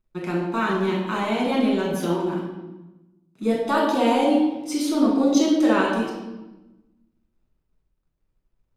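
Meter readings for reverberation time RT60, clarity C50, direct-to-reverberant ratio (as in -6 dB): 1.1 s, 2.0 dB, -4.5 dB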